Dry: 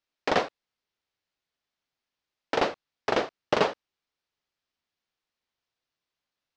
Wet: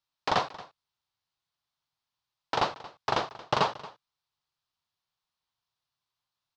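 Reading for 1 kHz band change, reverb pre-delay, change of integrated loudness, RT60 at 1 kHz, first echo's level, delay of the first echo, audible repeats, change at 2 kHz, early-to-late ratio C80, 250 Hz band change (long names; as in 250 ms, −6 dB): +1.5 dB, no reverb audible, −2.0 dB, no reverb audible, −18.5 dB, 228 ms, 1, −3.5 dB, no reverb audible, −6.0 dB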